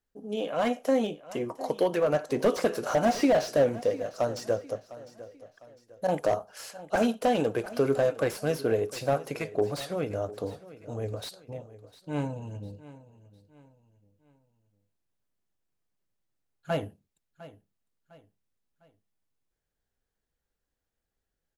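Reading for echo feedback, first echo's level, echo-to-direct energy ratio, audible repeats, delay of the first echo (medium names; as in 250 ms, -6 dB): 39%, -17.5 dB, -17.0 dB, 3, 704 ms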